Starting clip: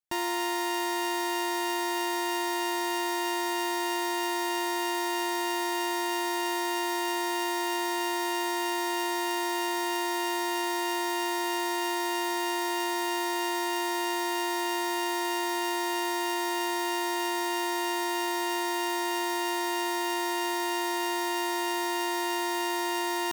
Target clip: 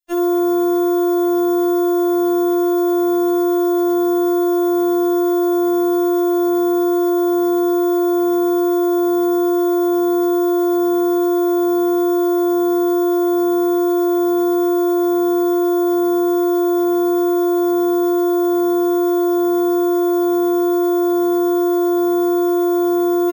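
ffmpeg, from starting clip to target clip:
-filter_complex "[0:a]bandreject=f=1100:w=11,aecho=1:1:18|66:0.376|0.316,acrossover=split=350|2000[s0][s1][s2];[s1]aeval=exprs='sgn(val(0))*max(abs(val(0))-0.00158,0)':c=same[s3];[s0][s3][s2]amix=inputs=3:normalize=0,afftfilt=real='re*4*eq(mod(b,16),0)':imag='im*4*eq(mod(b,16),0)':win_size=2048:overlap=0.75,volume=2.24"

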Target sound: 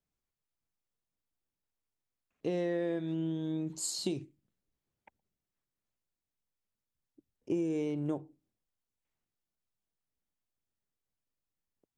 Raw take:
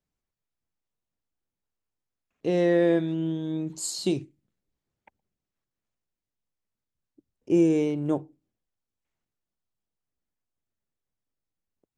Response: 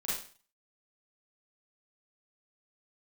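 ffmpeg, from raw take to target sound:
-af "acompressor=threshold=0.0501:ratio=6,volume=0.668"

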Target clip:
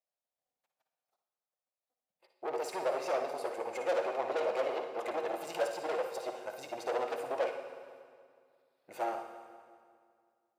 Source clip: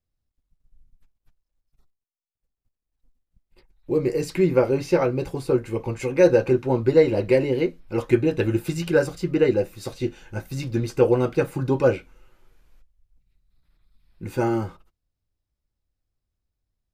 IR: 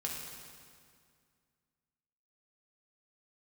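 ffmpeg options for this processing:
-filter_complex "[0:a]aeval=exprs='(tanh(17.8*val(0)+0.45)-tanh(0.45))/17.8':c=same,highpass=f=650:t=q:w=3.8,atempo=1.6,asplit=2[s0][s1];[1:a]atrim=start_sample=2205,adelay=57[s2];[s1][s2]afir=irnorm=-1:irlink=0,volume=0.473[s3];[s0][s3]amix=inputs=2:normalize=0,volume=0.473"

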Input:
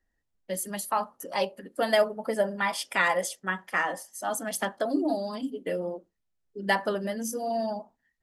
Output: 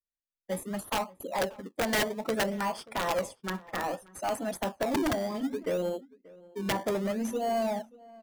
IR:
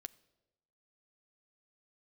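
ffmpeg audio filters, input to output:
-filter_complex "[0:a]afftdn=nr=30:nf=-40,acrossover=split=430|1200[s0][s1][s2];[s2]acompressor=threshold=0.00891:ratio=20[s3];[s0][s1][s3]amix=inputs=3:normalize=0,aeval=exprs='(mod(8.91*val(0)+1,2)-1)/8.91':c=same,asplit=2[s4][s5];[s5]acrusher=samples=23:mix=1:aa=0.000001:lfo=1:lforange=23:lforate=0.63,volume=0.473[s6];[s4][s6]amix=inputs=2:normalize=0,asoftclip=type=tanh:threshold=0.0708,asplit=2[s7][s8];[s8]adelay=583.1,volume=0.0794,highshelf=f=4000:g=-13.1[s9];[s7][s9]amix=inputs=2:normalize=0"

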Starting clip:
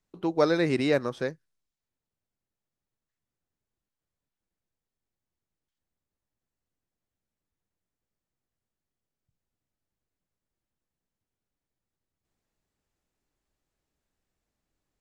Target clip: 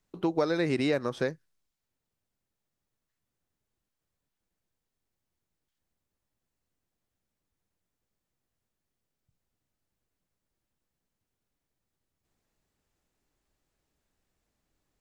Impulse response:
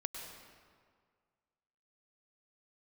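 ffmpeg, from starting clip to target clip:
-af "acompressor=threshold=0.0447:ratio=6,volume=1.5"

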